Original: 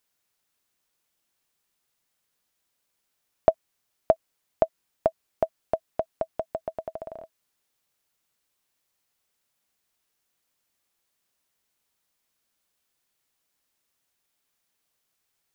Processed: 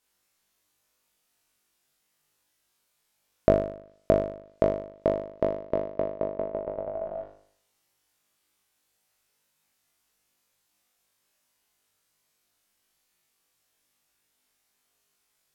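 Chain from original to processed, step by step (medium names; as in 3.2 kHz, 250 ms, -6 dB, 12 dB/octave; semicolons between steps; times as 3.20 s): low-pass that closes with the level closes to 560 Hz, closed at -30 dBFS; flutter echo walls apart 3.4 m, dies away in 0.6 s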